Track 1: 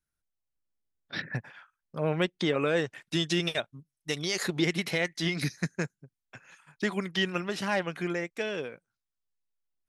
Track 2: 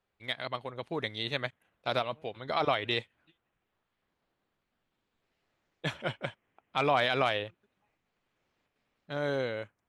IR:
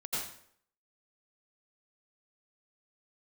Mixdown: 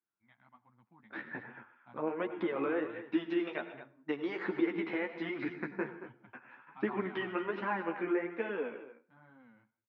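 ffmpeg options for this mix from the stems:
-filter_complex "[0:a]highpass=frequency=290:poles=1,acompressor=threshold=-31dB:ratio=4,volume=-1dB,asplit=3[link_01][link_02][link_03];[link_02]volume=-13.5dB[link_04];[link_03]volume=-12.5dB[link_05];[1:a]firequalizer=gain_entry='entry(210,0);entry(400,-29);entry(770,-9)':delay=0.05:min_phase=1,volume=-13.5dB,asplit=2[link_06][link_07];[link_07]volume=-21.5dB[link_08];[2:a]atrim=start_sample=2205[link_09];[link_04][link_08]amix=inputs=2:normalize=0[link_10];[link_10][link_09]afir=irnorm=-1:irlink=0[link_11];[link_05]aecho=0:1:227:1[link_12];[link_01][link_06][link_11][link_12]amix=inputs=4:normalize=0,flanger=delay=7.8:depth=8:regen=0:speed=1.3:shape=triangular,dynaudnorm=framelen=550:gausssize=7:maxgain=4dB,highpass=160,equalizer=frequency=160:width_type=q:width=4:gain=-9,equalizer=frequency=230:width_type=q:width=4:gain=4,equalizer=frequency=330:width_type=q:width=4:gain=7,equalizer=frequency=630:width_type=q:width=4:gain=-5,equalizer=frequency=930:width_type=q:width=4:gain=5,equalizer=frequency=1900:width_type=q:width=4:gain=-3,lowpass=frequency=2100:width=0.5412,lowpass=frequency=2100:width=1.3066"

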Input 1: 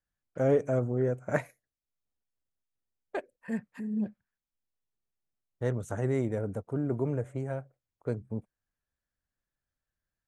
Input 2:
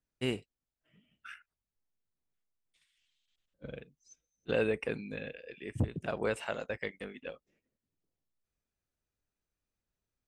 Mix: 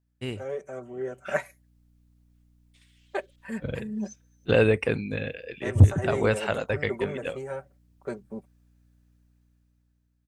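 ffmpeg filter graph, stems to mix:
ffmpeg -i stem1.wav -i stem2.wav -filter_complex "[0:a]highpass=frequency=650:poles=1,aecho=1:1:5.2:0.93,volume=-8dB[link_01];[1:a]equalizer=frequency=96:width_type=o:width=0.52:gain=13.5,aeval=exprs='val(0)+0.000316*(sin(2*PI*60*n/s)+sin(2*PI*2*60*n/s)/2+sin(2*PI*3*60*n/s)/3+sin(2*PI*4*60*n/s)/4+sin(2*PI*5*60*n/s)/5)':channel_layout=same,volume=-2dB[link_02];[link_01][link_02]amix=inputs=2:normalize=0,dynaudnorm=framelen=270:gausssize=9:maxgain=12dB" out.wav

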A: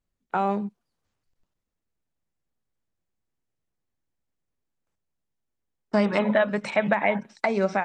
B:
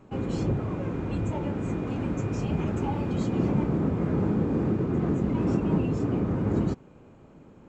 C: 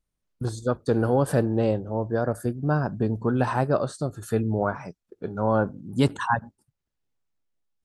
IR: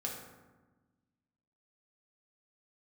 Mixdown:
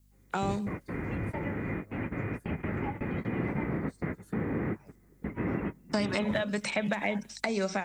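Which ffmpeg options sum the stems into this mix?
-filter_complex "[0:a]crystalizer=i=7:c=0,volume=-1.5dB[link_01];[1:a]lowpass=frequency=2000:width_type=q:width=7.9,volume=-4.5dB[link_02];[2:a]equalizer=frequency=190:width=2:gain=2.5,acrossover=split=160[link_03][link_04];[link_04]acompressor=threshold=-29dB:ratio=10[link_05];[link_03][link_05]amix=inputs=2:normalize=0,aeval=exprs='val(0)+0.00708*(sin(2*PI*50*n/s)+sin(2*PI*2*50*n/s)/2+sin(2*PI*3*50*n/s)/3+sin(2*PI*4*50*n/s)/4+sin(2*PI*5*50*n/s)/5)':channel_layout=same,volume=-19dB,asplit=2[link_06][link_07];[link_07]apad=whole_len=339022[link_08];[link_02][link_08]sidechaingate=range=-35dB:threshold=-50dB:ratio=16:detection=peak[link_09];[link_01][link_09][link_06]amix=inputs=3:normalize=0,acrossover=split=440|3900[link_10][link_11][link_12];[link_10]acompressor=threshold=-29dB:ratio=4[link_13];[link_11]acompressor=threshold=-34dB:ratio=4[link_14];[link_12]acompressor=threshold=-44dB:ratio=4[link_15];[link_13][link_14][link_15]amix=inputs=3:normalize=0"

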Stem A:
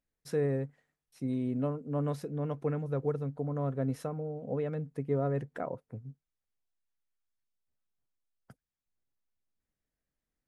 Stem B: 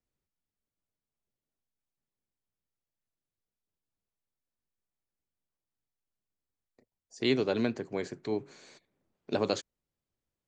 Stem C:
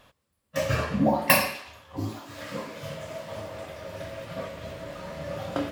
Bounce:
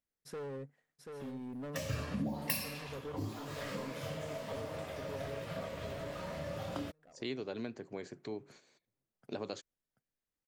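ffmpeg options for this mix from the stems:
ffmpeg -i stem1.wav -i stem2.wav -i stem3.wav -filter_complex "[0:a]lowshelf=frequency=130:gain=-9,asoftclip=type=hard:threshold=-32.5dB,volume=-5dB,asplit=2[link_01][link_02];[link_02]volume=-6.5dB[link_03];[1:a]agate=range=-10dB:threshold=-52dB:ratio=16:detection=peak,volume=-4dB[link_04];[2:a]acrossover=split=270|3000[link_05][link_06][link_07];[link_06]acompressor=threshold=-34dB:ratio=6[link_08];[link_05][link_08][link_07]amix=inputs=3:normalize=0,adelay=1200,volume=1dB[link_09];[link_03]aecho=0:1:735|1470|2205|2940:1|0.27|0.0729|0.0197[link_10];[link_01][link_04][link_09][link_10]amix=inputs=4:normalize=0,acompressor=threshold=-42dB:ratio=2" out.wav

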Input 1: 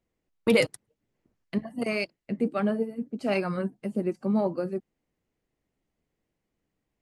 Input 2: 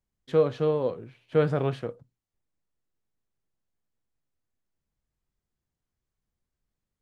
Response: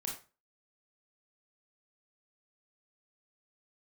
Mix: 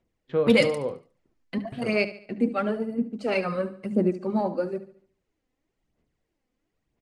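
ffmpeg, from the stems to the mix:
-filter_complex "[0:a]bandreject=frequency=50:width_type=h:width=6,bandreject=frequency=100:width_type=h:width=6,bandreject=frequency=150:width_type=h:width=6,bandreject=frequency=200:width_type=h:width=6,aphaser=in_gain=1:out_gain=1:delay=4:decay=0.53:speed=1:type=sinusoidal,volume=0.5dB,asplit=2[link_01][link_02];[link_02]volume=-14dB[link_03];[1:a]lowpass=3200,agate=range=-16dB:threshold=-50dB:ratio=16:detection=peak,volume=-4.5dB,asplit=3[link_04][link_05][link_06];[link_04]atrim=end=0.98,asetpts=PTS-STARTPTS,afade=type=out:start_time=0.976:duration=0.004:curve=hsin[link_07];[link_05]atrim=start=0.98:end=1.72,asetpts=PTS-STARTPTS,volume=0[link_08];[link_06]atrim=start=1.72,asetpts=PTS-STARTPTS,afade=type=in:duration=0.004:curve=hsin[link_09];[link_07][link_08][link_09]concat=n=3:v=0:a=1,asplit=2[link_10][link_11];[link_11]volume=-7.5dB[link_12];[2:a]atrim=start_sample=2205[link_13];[link_12][link_13]afir=irnorm=-1:irlink=0[link_14];[link_03]aecho=0:1:72|144|216|288|360|432:1|0.41|0.168|0.0689|0.0283|0.0116[link_15];[link_01][link_10][link_14][link_15]amix=inputs=4:normalize=0,lowpass=8100"

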